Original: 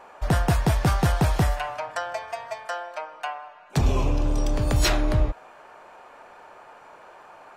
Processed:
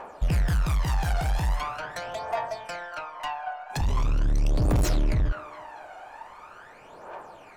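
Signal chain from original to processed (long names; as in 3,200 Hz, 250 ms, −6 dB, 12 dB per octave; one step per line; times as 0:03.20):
delay with a band-pass on its return 229 ms, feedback 51%, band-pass 870 Hz, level −9.5 dB
soft clipping −27.5 dBFS, distortion −7 dB
phase shifter 0.42 Hz, delay 1.4 ms, feedback 65%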